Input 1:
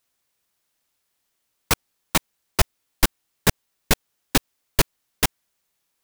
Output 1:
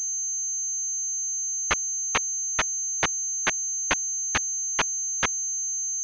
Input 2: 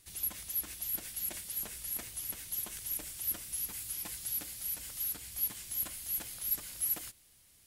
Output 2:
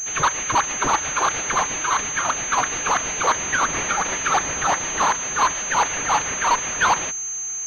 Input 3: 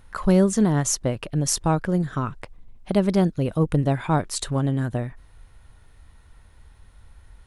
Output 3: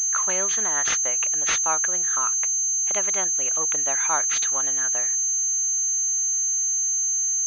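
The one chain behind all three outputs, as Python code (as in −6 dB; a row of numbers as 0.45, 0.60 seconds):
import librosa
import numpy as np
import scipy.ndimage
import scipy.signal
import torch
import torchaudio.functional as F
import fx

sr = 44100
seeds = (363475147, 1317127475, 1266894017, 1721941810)

y = scipy.signal.sosfilt(scipy.signal.butter(2, 1400.0, 'highpass', fs=sr, output='sos'), x)
y = fx.pwm(y, sr, carrier_hz=6300.0)
y = y * 10.0 ** (-9 / 20.0) / np.max(np.abs(y))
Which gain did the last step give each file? +1.5, +18.0, +7.0 decibels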